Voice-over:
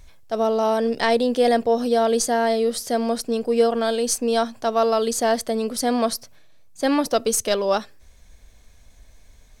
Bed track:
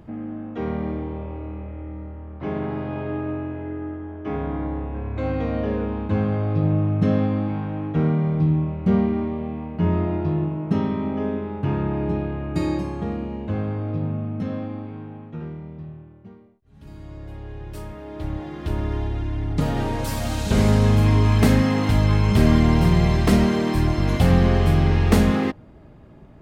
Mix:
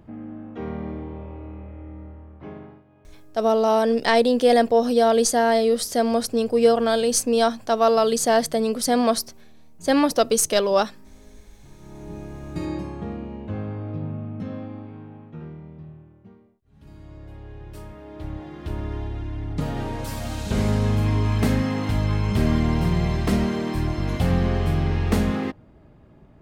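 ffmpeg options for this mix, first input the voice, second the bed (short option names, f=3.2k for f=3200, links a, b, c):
-filter_complex "[0:a]adelay=3050,volume=1.5dB[a];[1:a]volume=18.5dB,afade=t=out:st=2.1:d=0.73:silence=0.0707946,afade=t=in:st=11.77:d=1.02:silence=0.0707946[b];[a][b]amix=inputs=2:normalize=0"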